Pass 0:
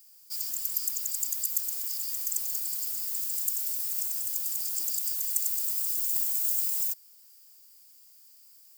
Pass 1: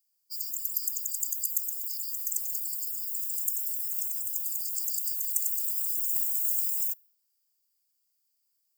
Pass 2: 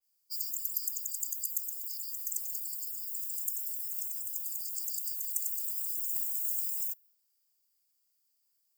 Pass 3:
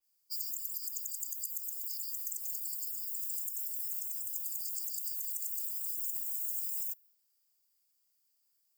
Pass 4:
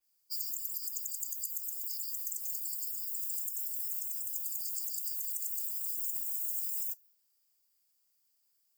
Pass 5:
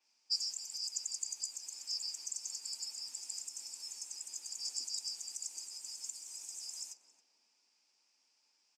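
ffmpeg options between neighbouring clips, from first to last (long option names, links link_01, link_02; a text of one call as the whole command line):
ffmpeg -i in.wav -af "afftdn=noise_reduction=20:noise_floor=-41" out.wav
ffmpeg -i in.wav -af "adynamicequalizer=threshold=0.00355:dfrequency=3600:dqfactor=0.7:tfrequency=3600:tqfactor=0.7:attack=5:release=100:ratio=0.375:range=2.5:mode=cutabove:tftype=highshelf" out.wav
ffmpeg -i in.wav -af "alimiter=level_in=0.5dB:limit=-24dB:level=0:latency=1:release=96,volume=-0.5dB" out.wav
ffmpeg -i in.wav -af "flanger=delay=2.7:depth=6.6:regen=-74:speed=0.92:shape=triangular,volume=5.5dB" out.wav
ffmpeg -i in.wav -filter_complex "[0:a]highpass=frequency=220:width=0.5412,highpass=frequency=220:width=1.3066,equalizer=frequency=260:width_type=q:width=4:gain=4,equalizer=frequency=890:width_type=q:width=4:gain=9,equalizer=frequency=2500:width_type=q:width=4:gain=9,equalizer=frequency=5600:width_type=q:width=4:gain=8,lowpass=frequency=6500:width=0.5412,lowpass=frequency=6500:width=1.3066,asplit=2[link_01][link_02];[link_02]adelay=273,lowpass=frequency=840:poles=1,volume=-6dB,asplit=2[link_03][link_04];[link_04]adelay=273,lowpass=frequency=840:poles=1,volume=0.53,asplit=2[link_05][link_06];[link_06]adelay=273,lowpass=frequency=840:poles=1,volume=0.53,asplit=2[link_07][link_08];[link_08]adelay=273,lowpass=frequency=840:poles=1,volume=0.53,asplit=2[link_09][link_10];[link_10]adelay=273,lowpass=frequency=840:poles=1,volume=0.53,asplit=2[link_11][link_12];[link_12]adelay=273,lowpass=frequency=840:poles=1,volume=0.53,asplit=2[link_13][link_14];[link_14]adelay=273,lowpass=frequency=840:poles=1,volume=0.53[link_15];[link_01][link_03][link_05][link_07][link_09][link_11][link_13][link_15]amix=inputs=8:normalize=0,volume=6dB" out.wav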